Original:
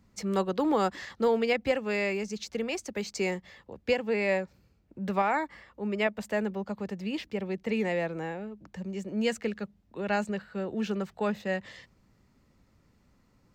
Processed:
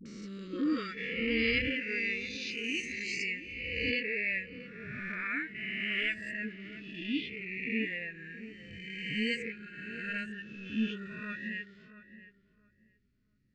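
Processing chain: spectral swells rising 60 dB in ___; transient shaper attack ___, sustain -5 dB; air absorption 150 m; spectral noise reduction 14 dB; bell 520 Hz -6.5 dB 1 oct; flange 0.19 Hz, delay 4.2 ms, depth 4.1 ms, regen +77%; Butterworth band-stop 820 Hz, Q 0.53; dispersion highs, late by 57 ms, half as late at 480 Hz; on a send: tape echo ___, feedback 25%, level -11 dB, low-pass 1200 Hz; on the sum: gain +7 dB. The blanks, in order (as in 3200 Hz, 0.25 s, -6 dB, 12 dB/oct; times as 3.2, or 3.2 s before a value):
2.51 s, -9 dB, 0.676 s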